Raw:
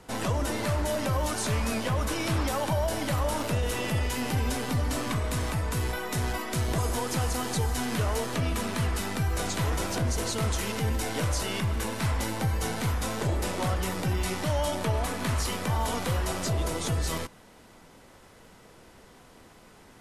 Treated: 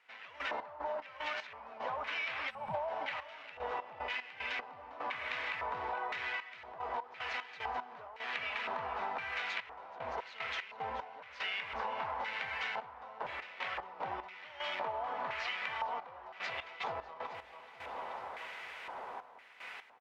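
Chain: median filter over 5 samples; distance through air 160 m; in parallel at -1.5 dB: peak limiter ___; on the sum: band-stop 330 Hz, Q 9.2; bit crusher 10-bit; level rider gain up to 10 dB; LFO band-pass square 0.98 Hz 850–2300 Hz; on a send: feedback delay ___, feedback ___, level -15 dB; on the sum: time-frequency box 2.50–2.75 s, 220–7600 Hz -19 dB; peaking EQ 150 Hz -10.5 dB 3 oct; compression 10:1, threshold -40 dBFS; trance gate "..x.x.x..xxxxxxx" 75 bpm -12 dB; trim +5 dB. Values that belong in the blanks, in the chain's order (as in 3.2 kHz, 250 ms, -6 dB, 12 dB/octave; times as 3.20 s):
-26 dBFS, 432 ms, 49%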